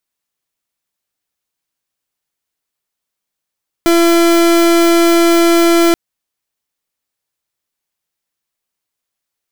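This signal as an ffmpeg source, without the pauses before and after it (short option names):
-f lavfi -i "aevalsrc='0.335*(2*lt(mod(338*t,1),0.37)-1)':d=2.08:s=44100"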